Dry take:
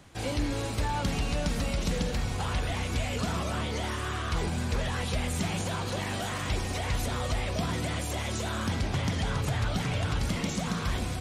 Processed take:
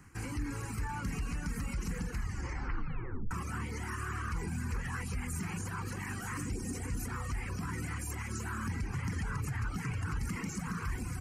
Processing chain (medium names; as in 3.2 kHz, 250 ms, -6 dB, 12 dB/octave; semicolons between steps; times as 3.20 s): reverb removal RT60 0.78 s; 2.09 s: tape stop 1.22 s; 6.37–6.99 s: ten-band graphic EQ 250 Hz +10 dB, 500 Hz +7 dB, 1 kHz -7 dB, 2 kHz -4 dB, 8 kHz +7 dB; peak limiter -26.5 dBFS, peak gain reduction 9 dB; static phaser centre 1.5 kHz, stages 4